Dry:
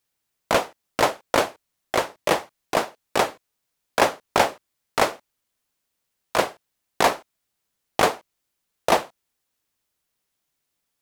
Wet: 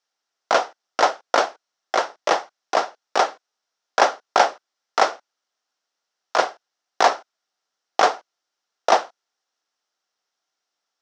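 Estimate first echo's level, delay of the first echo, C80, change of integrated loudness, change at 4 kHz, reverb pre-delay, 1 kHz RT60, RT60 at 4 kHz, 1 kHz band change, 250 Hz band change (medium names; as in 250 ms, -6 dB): no echo, no echo, no reverb, +2.0 dB, +1.0 dB, no reverb, no reverb, no reverb, +4.0 dB, -6.0 dB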